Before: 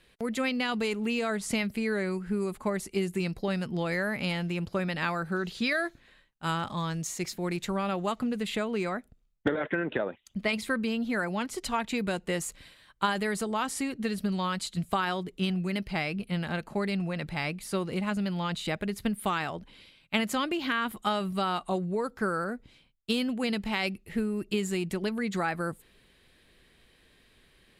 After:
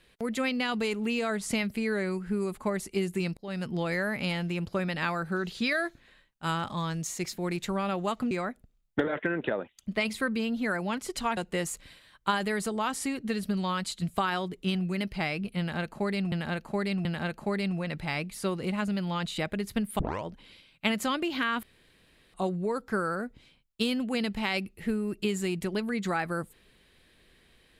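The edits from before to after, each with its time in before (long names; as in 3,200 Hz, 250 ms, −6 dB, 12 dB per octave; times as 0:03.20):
0:03.37–0:03.65: fade in
0:08.31–0:08.79: remove
0:11.85–0:12.12: remove
0:16.34–0:17.07: repeat, 3 plays
0:19.28: tape start 0.25 s
0:20.92–0:21.63: fill with room tone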